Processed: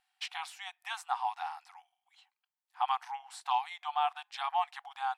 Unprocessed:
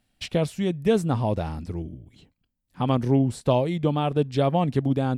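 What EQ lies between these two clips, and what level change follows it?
brick-wall FIR high-pass 720 Hz; tilt EQ -2.5 dB/octave; 0.0 dB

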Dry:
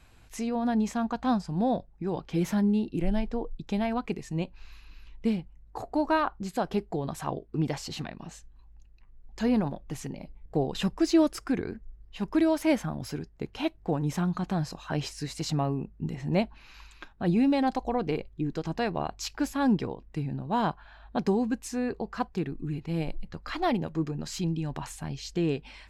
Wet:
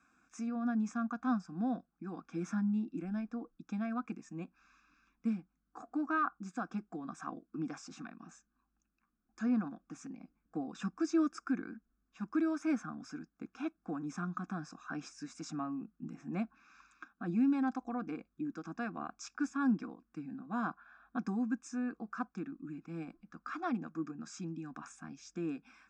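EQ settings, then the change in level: band-pass 250–4800 Hz; static phaser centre 610 Hz, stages 8; static phaser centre 2.9 kHz, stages 8; 0.0 dB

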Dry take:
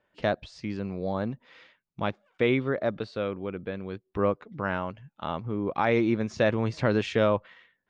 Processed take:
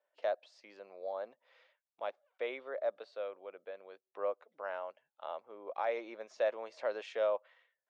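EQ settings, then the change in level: ladder high-pass 510 Hz, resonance 55%; -4.0 dB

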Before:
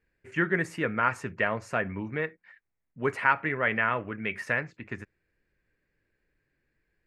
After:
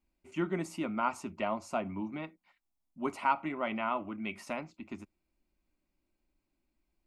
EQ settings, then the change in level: static phaser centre 460 Hz, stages 6; 0.0 dB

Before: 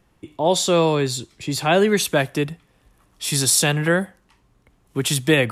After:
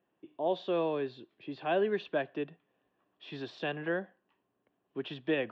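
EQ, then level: distance through air 150 m; cabinet simulation 360–2800 Hz, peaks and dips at 500 Hz -4 dB, 880 Hz -7 dB, 1.3 kHz -10 dB, 2.2 kHz -5 dB; peaking EQ 2.1 kHz -8 dB 0.36 oct; -7.5 dB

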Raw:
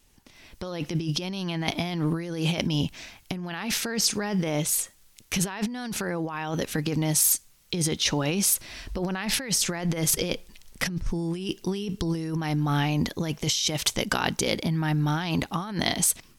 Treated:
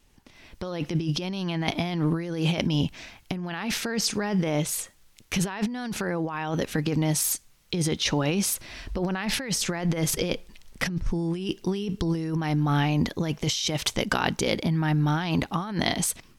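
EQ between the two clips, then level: treble shelf 5 kHz -8 dB; +1.5 dB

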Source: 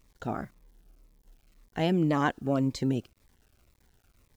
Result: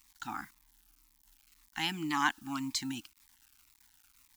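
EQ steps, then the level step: elliptic band-stop 310–830 Hz, stop band 40 dB; tilt EQ +2.5 dB/octave; peaking EQ 130 Hz -11 dB 1.9 oct; +1.0 dB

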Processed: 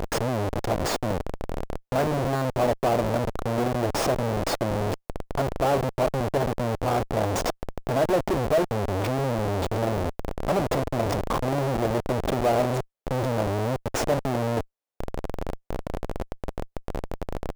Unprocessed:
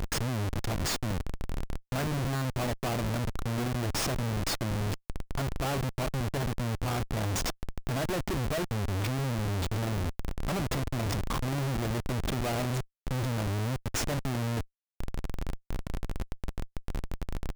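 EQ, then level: peaking EQ 580 Hz +13 dB 2 oct; 0.0 dB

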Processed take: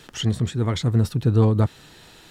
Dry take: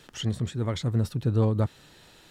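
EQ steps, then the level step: band-stop 560 Hz, Q 12; +6.0 dB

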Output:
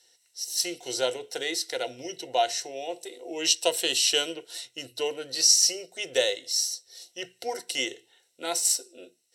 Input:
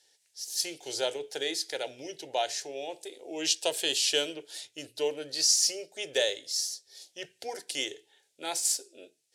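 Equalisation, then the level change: rippled EQ curve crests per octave 2, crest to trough 10 dB; +2.5 dB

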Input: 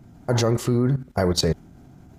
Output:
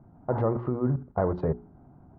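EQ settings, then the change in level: four-pole ladder low-pass 1.3 kHz, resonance 35%; hum notches 60/120/180/240/300/360/420 Hz; +2.5 dB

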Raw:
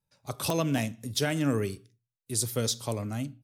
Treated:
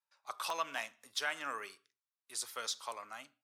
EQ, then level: resonant high-pass 1.1 kHz, resonance Q 2; treble shelf 7.8 kHz -12 dB; -4.5 dB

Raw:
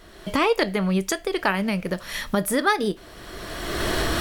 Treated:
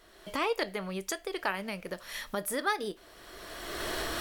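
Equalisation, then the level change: tone controls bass -14 dB, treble +1 dB; bass shelf 110 Hz +9 dB; peaking EQ 15 kHz +3 dB 0.49 oct; -9.0 dB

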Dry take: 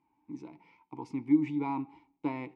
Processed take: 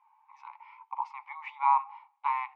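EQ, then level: brick-wall FIR high-pass 750 Hz; low-pass 2.5 kHz 12 dB/octave; peaking EQ 1.1 kHz +12 dB 0.38 oct; +8.0 dB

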